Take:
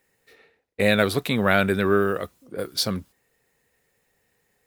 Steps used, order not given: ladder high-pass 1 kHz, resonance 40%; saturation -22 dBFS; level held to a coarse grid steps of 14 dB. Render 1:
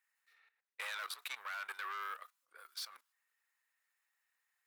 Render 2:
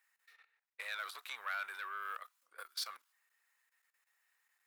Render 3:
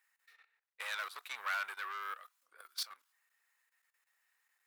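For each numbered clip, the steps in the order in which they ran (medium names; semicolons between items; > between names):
saturation > ladder high-pass > level held to a coarse grid; level held to a coarse grid > saturation > ladder high-pass; saturation > level held to a coarse grid > ladder high-pass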